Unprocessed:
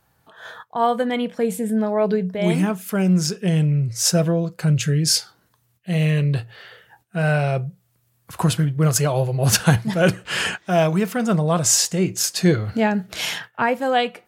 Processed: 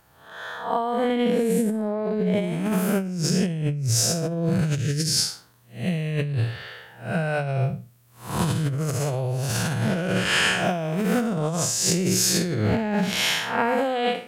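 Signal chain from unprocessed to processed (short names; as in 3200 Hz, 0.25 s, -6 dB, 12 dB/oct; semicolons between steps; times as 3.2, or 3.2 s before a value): time blur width 0.201 s; notches 50/100/150/200/250 Hz; negative-ratio compressor -27 dBFS, ratio -1; gain +3.5 dB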